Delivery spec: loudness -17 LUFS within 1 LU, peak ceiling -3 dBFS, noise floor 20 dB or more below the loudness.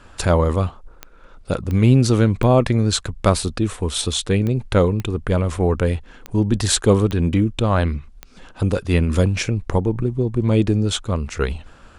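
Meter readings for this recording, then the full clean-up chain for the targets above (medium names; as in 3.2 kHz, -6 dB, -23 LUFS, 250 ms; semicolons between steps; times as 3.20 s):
clicks found 8; loudness -19.5 LUFS; peak level -2.5 dBFS; loudness target -17.0 LUFS
-> de-click; trim +2.5 dB; peak limiter -3 dBFS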